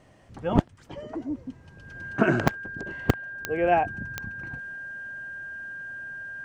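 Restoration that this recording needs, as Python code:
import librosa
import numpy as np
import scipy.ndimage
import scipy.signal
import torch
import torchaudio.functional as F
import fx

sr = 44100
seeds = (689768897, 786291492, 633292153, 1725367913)

y = fx.fix_declick_ar(x, sr, threshold=10.0)
y = fx.notch(y, sr, hz=1600.0, q=30.0)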